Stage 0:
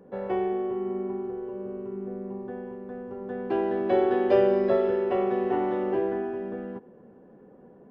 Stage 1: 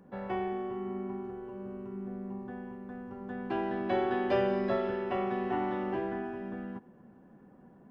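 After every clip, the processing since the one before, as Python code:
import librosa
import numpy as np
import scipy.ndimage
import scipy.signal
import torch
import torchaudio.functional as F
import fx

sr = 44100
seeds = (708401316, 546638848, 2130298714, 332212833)

y = fx.peak_eq(x, sr, hz=460.0, db=-13.0, octaves=0.79)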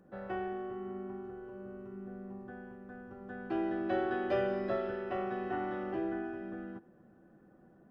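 y = x + 0.5 * np.pad(x, (int(1.6 * sr / 1000.0), 0))[:len(x)]
y = fx.small_body(y, sr, hz=(330.0, 1500.0), ring_ms=95, db=16)
y = F.gain(torch.from_numpy(y), -6.0).numpy()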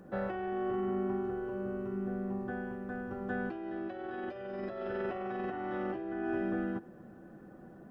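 y = fx.over_compress(x, sr, threshold_db=-41.0, ratio=-1.0)
y = F.gain(torch.from_numpy(y), 5.0).numpy()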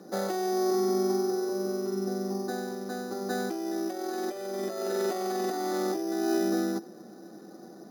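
y = fx.cabinet(x, sr, low_hz=220.0, low_slope=24, high_hz=2500.0, hz=(250.0, 550.0, 1000.0, 1600.0), db=(-5, -5, -6, -9))
y = np.repeat(scipy.signal.resample_poly(y, 1, 8), 8)[:len(y)]
y = F.gain(torch.from_numpy(y), 9.0).numpy()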